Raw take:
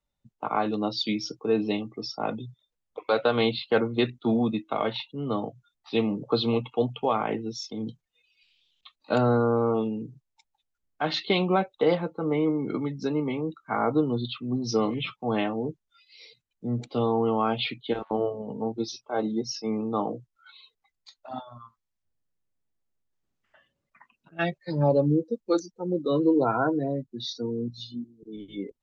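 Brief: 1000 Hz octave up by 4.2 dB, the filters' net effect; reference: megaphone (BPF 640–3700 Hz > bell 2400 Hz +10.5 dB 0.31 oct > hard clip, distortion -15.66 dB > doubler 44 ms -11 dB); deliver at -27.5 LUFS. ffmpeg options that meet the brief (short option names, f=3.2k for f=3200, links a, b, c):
-filter_complex "[0:a]highpass=640,lowpass=3.7k,equalizer=f=1k:t=o:g=7,equalizer=f=2.4k:t=o:w=0.31:g=10.5,asoftclip=type=hard:threshold=-16.5dB,asplit=2[a][b];[b]adelay=44,volume=-11dB[c];[a][c]amix=inputs=2:normalize=0,volume=2dB"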